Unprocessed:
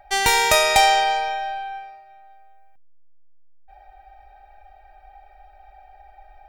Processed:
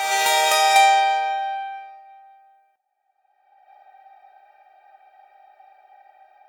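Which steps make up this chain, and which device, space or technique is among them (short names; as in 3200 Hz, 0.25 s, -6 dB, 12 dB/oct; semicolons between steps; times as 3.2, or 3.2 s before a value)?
ghost voice (reverse; reverb RT60 2.3 s, pre-delay 6 ms, DRR 1 dB; reverse; HPF 480 Hz 12 dB/oct); gain -3.5 dB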